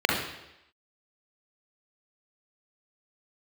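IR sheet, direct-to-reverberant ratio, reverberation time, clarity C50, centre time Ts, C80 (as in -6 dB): -3.0 dB, 0.85 s, 2.0 dB, 53 ms, 5.5 dB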